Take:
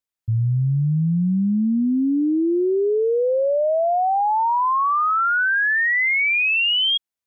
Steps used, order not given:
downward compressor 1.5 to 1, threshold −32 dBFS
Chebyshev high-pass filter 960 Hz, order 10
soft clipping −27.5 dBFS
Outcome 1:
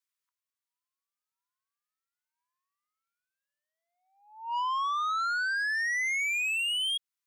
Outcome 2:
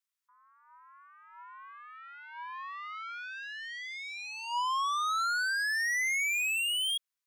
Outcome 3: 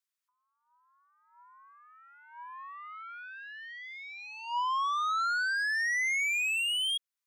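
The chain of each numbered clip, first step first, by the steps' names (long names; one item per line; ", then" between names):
downward compressor, then Chebyshev high-pass filter, then soft clipping
soft clipping, then downward compressor, then Chebyshev high-pass filter
downward compressor, then soft clipping, then Chebyshev high-pass filter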